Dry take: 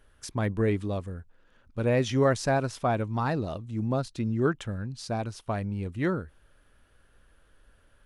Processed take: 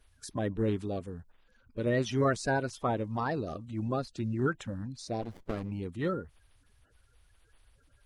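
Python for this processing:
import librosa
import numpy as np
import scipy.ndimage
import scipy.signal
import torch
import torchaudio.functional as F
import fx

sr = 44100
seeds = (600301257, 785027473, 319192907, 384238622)

y = fx.spec_quant(x, sr, step_db=30)
y = fx.running_max(y, sr, window=33, at=(5.21, 5.7), fade=0.02)
y = y * 10.0 ** (-3.5 / 20.0)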